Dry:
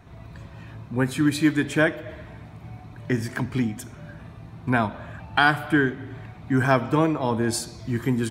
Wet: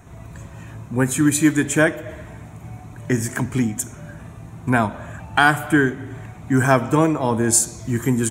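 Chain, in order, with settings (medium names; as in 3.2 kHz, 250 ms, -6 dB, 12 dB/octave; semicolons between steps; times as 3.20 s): resonant high shelf 5.7 kHz +7 dB, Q 3; trim +4 dB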